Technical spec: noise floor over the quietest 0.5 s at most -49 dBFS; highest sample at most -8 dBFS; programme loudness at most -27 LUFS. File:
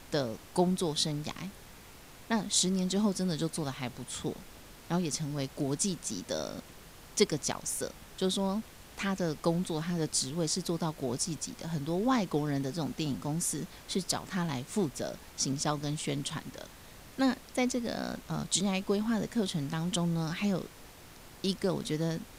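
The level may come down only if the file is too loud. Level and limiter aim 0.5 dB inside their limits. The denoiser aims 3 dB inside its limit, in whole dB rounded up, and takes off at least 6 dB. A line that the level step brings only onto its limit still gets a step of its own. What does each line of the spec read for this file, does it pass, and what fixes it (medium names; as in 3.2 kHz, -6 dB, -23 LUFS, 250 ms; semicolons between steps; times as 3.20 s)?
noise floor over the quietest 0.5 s -51 dBFS: pass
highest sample -11.5 dBFS: pass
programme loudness -32.5 LUFS: pass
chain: none needed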